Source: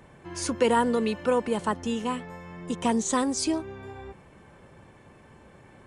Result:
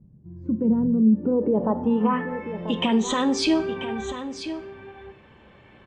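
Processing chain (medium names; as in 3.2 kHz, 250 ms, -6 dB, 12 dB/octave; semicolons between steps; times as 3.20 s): spectral noise reduction 10 dB; low-pass sweep 170 Hz -> 3.2 kHz, 0.95–2.58 s; peak limiter -23.5 dBFS, peak gain reduction 14 dB; on a send: delay 988 ms -11 dB; on the sum: plate-style reverb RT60 0.53 s, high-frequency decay 1×, DRR 10.5 dB; trim +9 dB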